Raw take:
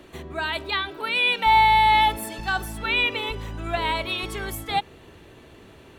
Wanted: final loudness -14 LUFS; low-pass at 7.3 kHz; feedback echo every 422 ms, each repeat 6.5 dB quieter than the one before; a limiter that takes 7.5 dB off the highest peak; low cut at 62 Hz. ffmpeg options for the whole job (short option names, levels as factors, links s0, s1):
-af "highpass=62,lowpass=7300,alimiter=limit=0.158:level=0:latency=1,aecho=1:1:422|844|1266|1688|2110|2532:0.473|0.222|0.105|0.0491|0.0231|0.0109,volume=3.55"